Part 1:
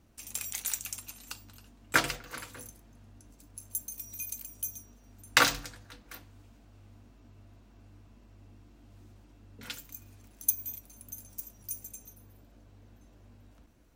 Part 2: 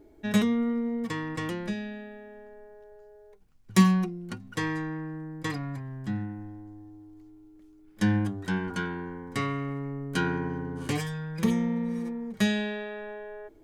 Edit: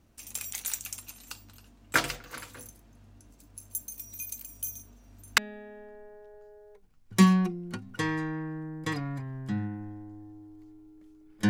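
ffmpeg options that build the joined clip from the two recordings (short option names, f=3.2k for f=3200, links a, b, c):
-filter_complex "[0:a]asplit=3[a][b][c];[a]afade=t=out:st=4.48:d=0.02[d];[b]asplit=2[e][f];[f]adelay=42,volume=-8dB[g];[e][g]amix=inputs=2:normalize=0,afade=t=in:st=4.48:d=0.02,afade=t=out:st=5.38:d=0.02[h];[c]afade=t=in:st=5.38:d=0.02[i];[d][h][i]amix=inputs=3:normalize=0,apad=whole_dur=11.49,atrim=end=11.49,atrim=end=5.382[j];[1:a]atrim=start=1.958:end=8.07[k];[j][k]acrossfade=d=0.004:c1=hsin:c2=hsin"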